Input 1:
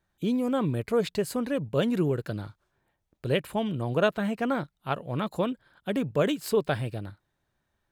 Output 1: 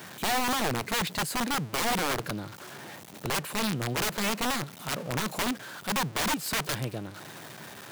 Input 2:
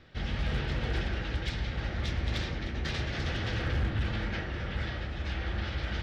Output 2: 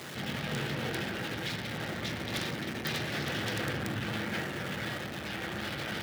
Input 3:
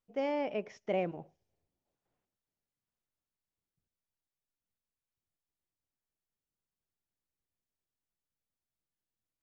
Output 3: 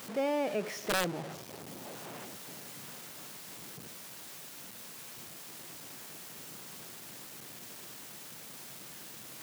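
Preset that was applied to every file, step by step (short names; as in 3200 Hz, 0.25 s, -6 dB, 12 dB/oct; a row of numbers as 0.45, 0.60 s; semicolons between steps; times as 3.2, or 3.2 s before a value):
zero-crossing step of -36.5 dBFS; HPF 130 Hz 24 dB/oct; wrapped overs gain 22.5 dB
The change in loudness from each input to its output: -1.0, -1.0, -5.0 LU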